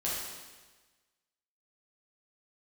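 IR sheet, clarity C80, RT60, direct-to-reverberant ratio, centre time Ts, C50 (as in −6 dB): 2.0 dB, 1.3 s, −7.0 dB, 87 ms, −1.0 dB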